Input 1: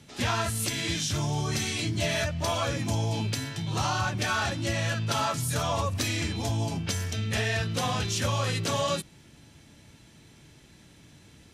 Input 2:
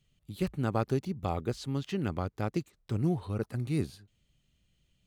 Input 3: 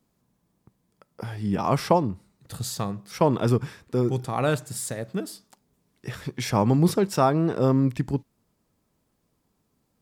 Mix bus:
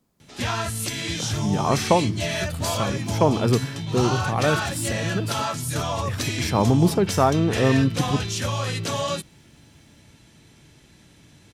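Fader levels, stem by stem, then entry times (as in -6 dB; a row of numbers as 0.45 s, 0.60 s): +1.5 dB, -5.5 dB, +1.5 dB; 0.20 s, 2.00 s, 0.00 s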